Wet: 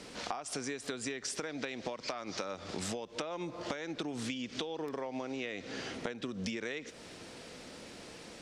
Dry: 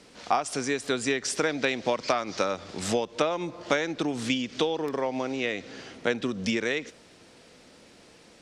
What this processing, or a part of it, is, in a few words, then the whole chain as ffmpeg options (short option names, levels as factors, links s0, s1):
serial compression, leveller first: -af "acompressor=threshold=0.0447:ratio=2.5,acompressor=threshold=0.00891:ratio=5,volume=1.68"